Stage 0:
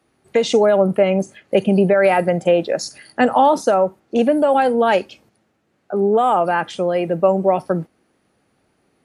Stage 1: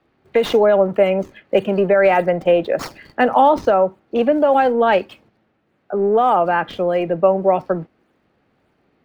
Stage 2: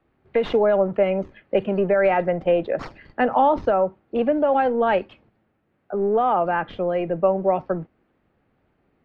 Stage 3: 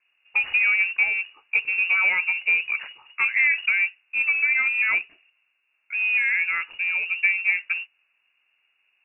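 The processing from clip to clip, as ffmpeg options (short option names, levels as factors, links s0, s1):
-filter_complex "[0:a]acrossover=split=270|4300[s0][s1][s2];[s0]asoftclip=type=tanh:threshold=0.0355[s3];[s2]acrusher=samples=36:mix=1:aa=0.000001:lfo=1:lforange=57.6:lforate=1.7[s4];[s3][s1][s4]amix=inputs=3:normalize=0,volume=1.12"
-af "lowpass=3000,lowshelf=f=79:g=11,volume=0.562"
-af "acrusher=bits=4:mode=log:mix=0:aa=0.000001,highshelf=f=2300:g=-9.5,lowpass=f=2500:t=q:w=0.5098,lowpass=f=2500:t=q:w=0.6013,lowpass=f=2500:t=q:w=0.9,lowpass=f=2500:t=q:w=2.563,afreqshift=-2900,volume=0.794"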